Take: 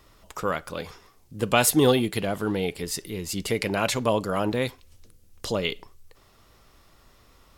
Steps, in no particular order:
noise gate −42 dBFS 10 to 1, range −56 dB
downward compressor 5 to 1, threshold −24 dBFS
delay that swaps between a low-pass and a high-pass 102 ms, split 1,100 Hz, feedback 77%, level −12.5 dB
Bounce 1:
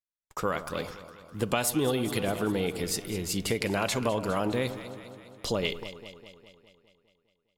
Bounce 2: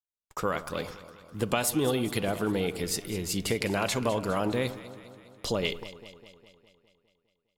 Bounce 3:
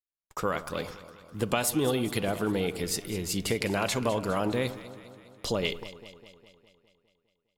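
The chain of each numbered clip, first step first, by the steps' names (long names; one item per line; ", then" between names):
noise gate, then delay that swaps between a low-pass and a high-pass, then downward compressor
downward compressor, then noise gate, then delay that swaps between a low-pass and a high-pass
noise gate, then downward compressor, then delay that swaps between a low-pass and a high-pass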